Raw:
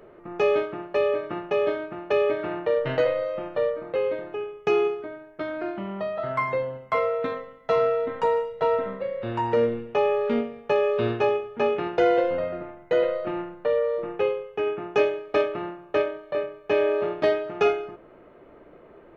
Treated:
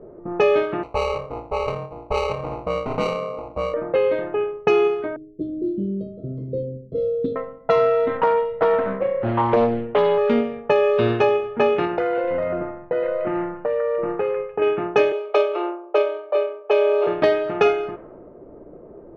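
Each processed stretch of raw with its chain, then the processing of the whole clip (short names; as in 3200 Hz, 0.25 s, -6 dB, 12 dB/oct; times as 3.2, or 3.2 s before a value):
0.83–3.74 HPF 930 Hz + sample-rate reducer 1700 Hz
5.16–7.36 inverse Chebyshev band-stop 710–2400 Hz + hard clip -23 dBFS + mismatched tape noise reduction decoder only
8.17–10.18 air absorption 250 m + Doppler distortion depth 0.46 ms
11.85–14.62 bell 3300 Hz -6.5 dB 0.33 oct + compressor 5:1, threshold -28 dBFS + delay with a stepping band-pass 0.149 s, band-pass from 1600 Hz, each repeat 0.7 oct, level -4 dB
15.12–17.07 steep high-pass 340 Hz 96 dB/oct + bell 1800 Hz -14.5 dB 0.29 oct
whole clip: low-pass opened by the level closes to 490 Hz, open at -21 dBFS; compressor 2:1, threshold -26 dBFS; gain +9 dB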